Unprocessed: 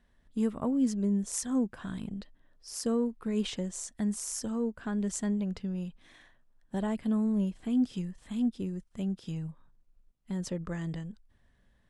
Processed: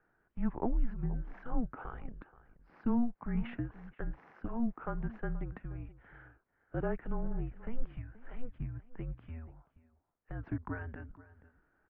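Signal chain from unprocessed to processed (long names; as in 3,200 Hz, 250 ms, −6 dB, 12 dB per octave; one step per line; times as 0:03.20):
slap from a distant wall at 82 metres, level −17 dB
single-sideband voice off tune −240 Hz 270–2,200 Hz
level +2.5 dB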